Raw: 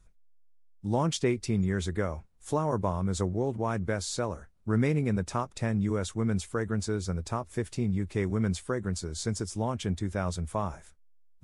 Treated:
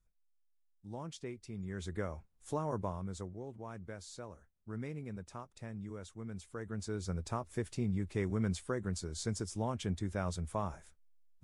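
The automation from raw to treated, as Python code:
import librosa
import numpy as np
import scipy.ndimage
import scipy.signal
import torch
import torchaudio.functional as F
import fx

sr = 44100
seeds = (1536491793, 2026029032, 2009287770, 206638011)

y = fx.gain(x, sr, db=fx.line((1.52, -17.0), (1.95, -8.0), (2.81, -8.0), (3.35, -16.0), (6.33, -16.0), (7.14, -5.5)))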